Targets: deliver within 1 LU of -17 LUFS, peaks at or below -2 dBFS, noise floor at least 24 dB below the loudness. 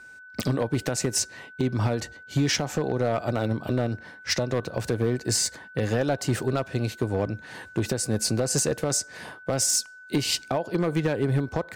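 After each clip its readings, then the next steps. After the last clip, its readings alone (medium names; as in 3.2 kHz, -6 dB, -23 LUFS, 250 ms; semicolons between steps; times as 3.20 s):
clipped samples 1.0%; clipping level -16.5 dBFS; steady tone 1.5 kHz; tone level -44 dBFS; loudness -26.5 LUFS; peak level -16.5 dBFS; loudness target -17.0 LUFS
-> clip repair -16.5 dBFS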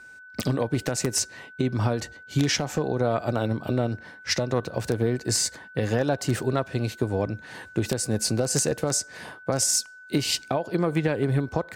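clipped samples 0.0%; steady tone 1.5 kHz; tone level -44 dBFS
-> band-stop 1.5 kHz, Q 30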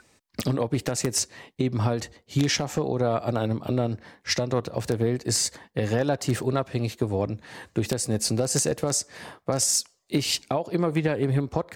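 steady tone not found; loudness -26.0 LUFS; peak level -7.5 dBFS; loudness target -17.0 LUFS
-> trim +9 dB; peak limiter -2 dBFS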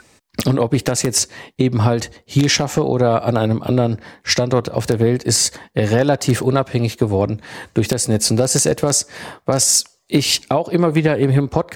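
loudness -17.5 LUFS; peak level -2.0 dBFS; noise floor -58 dBFS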